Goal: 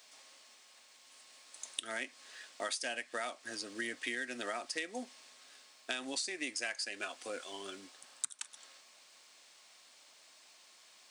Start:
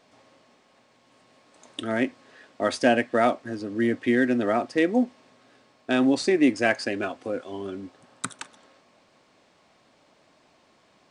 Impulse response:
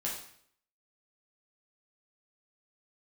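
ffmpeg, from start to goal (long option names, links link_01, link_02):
-af "aderivative,acompressor=threshold=-46dB:ratio=8,volume=11dB"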